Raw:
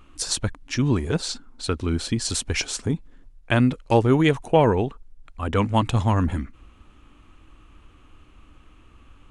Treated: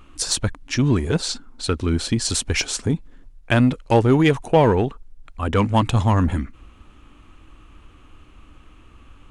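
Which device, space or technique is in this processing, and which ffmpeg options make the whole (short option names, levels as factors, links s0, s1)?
parallel distortion: -filter_complex "[0:a]asplit=2[s0][s1];[s1]asoftclip=type=hard:threshold=0.126,volume=0.501[s2];[s0][s2]amix=inputs=2:normalize=0"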